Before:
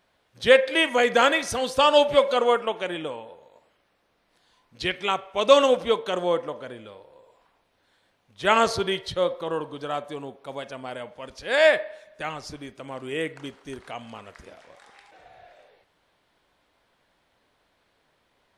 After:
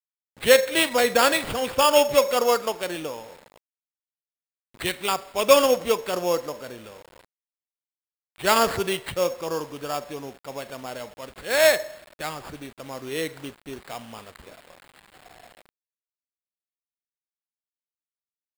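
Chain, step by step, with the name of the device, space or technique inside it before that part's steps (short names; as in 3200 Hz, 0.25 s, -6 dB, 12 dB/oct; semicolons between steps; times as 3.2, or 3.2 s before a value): early 8-bit sampler (sample-rate reducer 6000 Hz, jitter 0%; bit-crush 8-bit)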